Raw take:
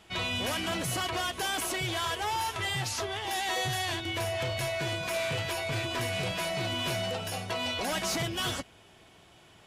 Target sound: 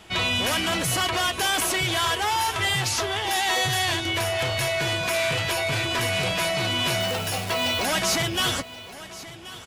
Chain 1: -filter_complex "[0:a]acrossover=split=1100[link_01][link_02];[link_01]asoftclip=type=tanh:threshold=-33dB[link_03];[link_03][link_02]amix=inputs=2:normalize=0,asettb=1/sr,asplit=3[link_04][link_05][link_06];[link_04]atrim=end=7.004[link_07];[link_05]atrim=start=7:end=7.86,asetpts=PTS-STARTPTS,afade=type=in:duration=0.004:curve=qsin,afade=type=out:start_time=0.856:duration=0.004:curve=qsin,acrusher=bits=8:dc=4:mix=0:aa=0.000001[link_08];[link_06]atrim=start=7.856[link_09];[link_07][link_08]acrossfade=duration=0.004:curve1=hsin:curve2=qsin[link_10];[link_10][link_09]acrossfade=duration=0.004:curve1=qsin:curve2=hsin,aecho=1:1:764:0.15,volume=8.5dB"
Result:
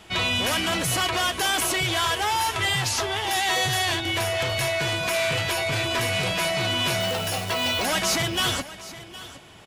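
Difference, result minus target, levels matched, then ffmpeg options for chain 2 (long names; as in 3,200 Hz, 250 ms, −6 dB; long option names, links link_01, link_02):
echo 315 ms early
-filter_complex "[0:a]acrossover=split=1100[link_01][link_02];[link_01]asoftclip=type=tanh:threshold=-33dB[link_03];[link_03][link_02]amix=inputs=2:normalize=0,asettb=1/sr,asplit=3[link_04][link_05][link_06];[link_04]atrim=end=7.004[link_07];[link_05]atrim=start=7:end=7.86,asetpts=PTS-STARTPTS,afade=type=in:duration=0.004:curve=qsin,afade=type=out:start_time=0.856:duration=0.004:curve=qsin,acrusher=bits=8:dc=4:mix=0:aa=0.000001[link_08];[link_06]atrim=start=7.856[link_09];[link_07][link_08]acrossfade=duration=0.004:curve1=hsin:curve2=qsin[link_10];[link_10][link_09]acrossfade=duration=0.004:curve1=qsin:curve2=hsin,aecho=1:1:1079:0.15,volume=8.5dB"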